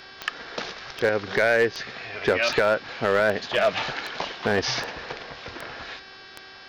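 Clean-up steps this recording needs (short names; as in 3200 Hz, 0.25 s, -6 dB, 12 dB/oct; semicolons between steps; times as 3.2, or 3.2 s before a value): clip repair -12.5 dBFS; de-click; de-hum 382 Hz, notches 14; notch 1600 Hz, Q 30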